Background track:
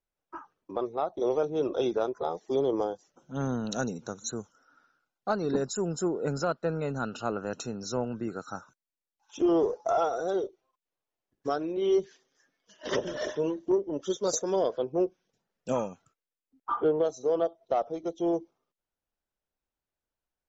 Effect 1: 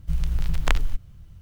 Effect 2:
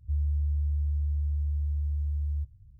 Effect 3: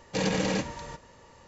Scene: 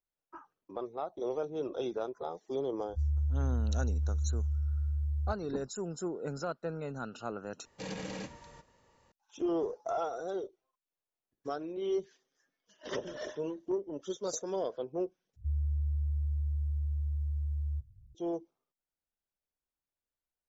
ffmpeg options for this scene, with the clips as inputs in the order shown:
ffmpeg -i bed.wav -i cue0.wav -i cue1.wav -i cue2.wav -filter_complex "[2:a]asplit=2[link_01][link_02];[0:a]volume=-7.5dB,asplit=3[link_03][link_04][link_05];[link_03]atrim=end=7.654[link_06];[3:a]atrim=end=1.47,asetpts=PTS-STARTPTS,volume=-13dB[link_07];[link_04]atrim=start=9.116:end=15.364[link_08];[link_02]atrim=end=2.79,asetpts=PTS-STARTPTS,volume=-4dB[link_09];[link_05]atrim=start=18.146[link_10];[link_01]atrim=end=2.79,asetpts=PTS-STARTPTS,volume=-2.5dB,afade=type=in:duration=0.004:curve=hsin,afade=type=out:start_time=2.786:duration=0.004:curve=hsin,adelay=2880[link_11];[link_06][link_07]acrossfade=duration=0.004:curve1=hsin:curve2=hsin[link_12];[link_12][link_08]acrossfade=duration=0.004:curve1=hsin:curve2=hsin[link_13];[link_13][link_09]acrossfade=duration=0.004:curve1=hsin:curve2=hsin[link_14];[link_14][link_10]acrossfade=duration=0.004:curve1=hsin:curve2=hsin[link_15];[link_15][link_11]amix=inputs=2:normalize=0" out.wav

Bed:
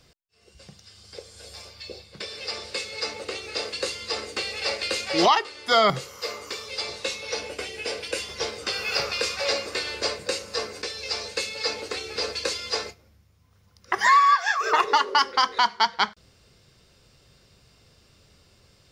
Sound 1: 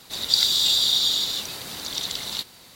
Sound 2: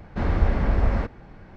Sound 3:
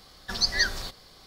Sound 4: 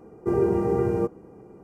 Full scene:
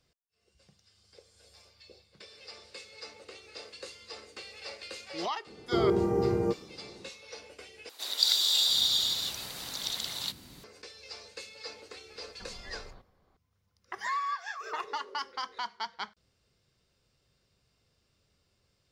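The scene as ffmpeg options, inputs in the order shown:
ffmpeg -i bed.wav -i cue0.wav -i cue1.wav -i cue2.wav -i cue3.wav -filter_complex "[0:a]volume=-15.5dB[link_01];[1:a]acrossover=split=330[link_02][link_03];[link_02]adelay=700[link_04];[link_04][link_03]amix=inputs=2:normalize=0[link_05];[3:a]lowpass=1300[link_06];[link_01]asplit=2[link_07][link_08];[link_07]atrim=end=7.894[link_09];[link_05]atrim=end=2.75,asetpts=PTS-STARTPTS,volume=-5.5dB[link_10];[link_08]atrim=start=10.636[link_11];[4:a]atrim=end=1.63,asetpts=PTS-STARTPTS,volume=-4dB,afade=type=in:duration=0.004:curve=hsin,afade=type=out:start_time=1.626:duration=0.004:curve=hsin,adelay=5460[link_12];[link_06]atrim=end=1.26,asetpts=PTS-STARTPTS,volume=-12.5dB,afade=type=in:duration=0.004:curve=hsin,afade=type=out:start_time=1.256:duration=0.004:curve=hsin,adelay=12110[link_13];[link_09][link_10]acrossfade=duration=0.004:curve1=hsin:curve2=hsin[link_14];[link_14][link_11]acrossfade=duration=0.004:curve1=hsin:curve2=hsin[link_15];[link_15][link_12][link_13]amix=inputs=3:normalize=0" out.wav

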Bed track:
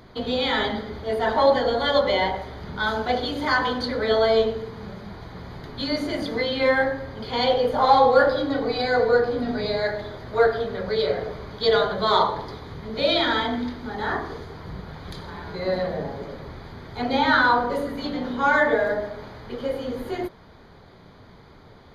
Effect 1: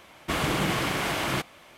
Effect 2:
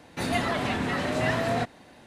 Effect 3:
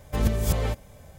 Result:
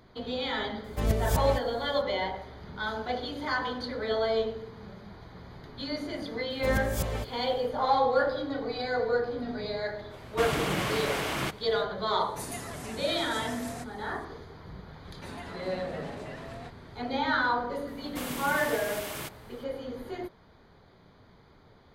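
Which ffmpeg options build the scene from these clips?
ffmpeg -i bed.wav -i cue0.wav -i cue1.wav -i cue2.wav -filter_complex "[3:a]asplit=2[link_01][link_02];[1:a]asplit=2[link_03][link_04];[2:a]asplit=2[link_05][link_06];[0:a]volume=-8.5dB[link_07];[link_02]lowshelf=frequency=140:gain=-5[link_08];[link_05]aexciter=amount=7.6:drive=2.9:freq=5400[link_09];[link_06]acompressor=threshold=-29dB:ratio=6:attack=3.2:release=140:knee=1:detection=peak[link_10];[link_04]aemphasis=mode=production:type=50fm[link_11];[link_01]atrim=end=1.18,asetpts=PTS-STARTPTS,volume=-3.5dB,afade=type=in:duration=0.004:curve=hsin,afade=type=out:start_time=1.176:duration=0.004:curve=hsin,adelay=840[link_12];[link_08]atrim=end=1.18,asetpts=PTS-STARTPTS,volume=-4dB,afade=type=in:duration=0.004:curve=hsin,afade=type=out:start_time=1.176:duration=0.004:curve=hsin,adelay=286650S[link_13];[link_03]atrim=end=1.77,asetpts=PTS-STARTPTS,volume=-3.5dB,afade=type=in:duration=0.05,afade=type=out:start_time=1.72:duration=0.05,adelay=10090[link_14];[link_09]atrim=end=2.06,asetpts=PTS-STARTPTS,volume=-14dB,afade=type=in:duration=0.004:curve=hsin,afade=type=out:start_time=2.056:duration=0.004:curve=hsin,adelay=12190[link_15];[link_10]atrim=end=2.06,asetpts=PTS-STARTPTS,volume=-10.5dB,afade=type=in:duration=0.004:curve=hsin,afade=type=out:start_time=2.056:duration=0.004:curve=hsin,adelay=15050[link_16];[link_11]atrim=end=1.77,asetpts=PTS-STARTPTS,volume=-12.5dB,afade=type=in:duration=0.004:curve=hsin,afade=type=out:start_time=1.766:duration=0.004:curve=hsin,adelay=17870[link_17];[link_07][link_12][link_13][link_14][link_15][link_16][link_17]amix=inputs=7:normalize=0" out.wav

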